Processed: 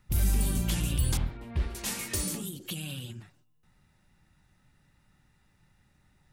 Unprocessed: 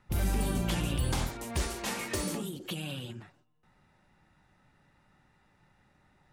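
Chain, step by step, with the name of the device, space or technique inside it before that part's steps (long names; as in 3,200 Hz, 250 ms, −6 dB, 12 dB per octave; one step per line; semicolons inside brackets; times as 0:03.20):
smiley-face EQ (low-shelf EQ 130 Hz +5.5 dB; parametric band 700 Hz −7 dB 2.7 octaves; high-shelf EQ 6,400 Hz +9 dB)
0:01.17–0:01.75: high-frequency loss of the air 420 metres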